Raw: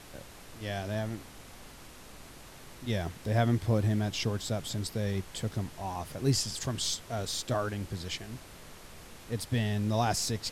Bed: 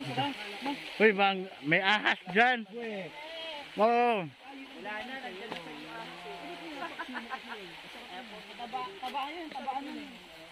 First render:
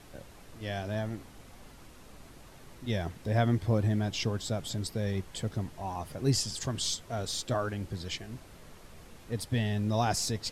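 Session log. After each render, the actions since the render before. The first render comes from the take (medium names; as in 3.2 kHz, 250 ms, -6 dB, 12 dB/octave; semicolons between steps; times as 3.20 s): noise reduction 6 dB, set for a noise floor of -50 dBFS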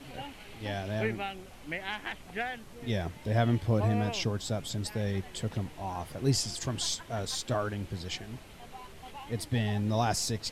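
add bed -10.5 dB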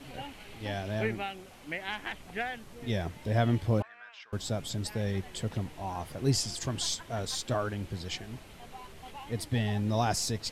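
1.24–1.88 s: bass shelf 91 Hz -9.5 dB; 3.82–4.33 s: ladder band-pass 1.7 kHz, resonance 60%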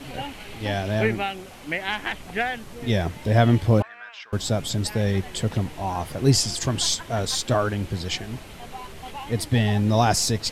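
trim +9 dB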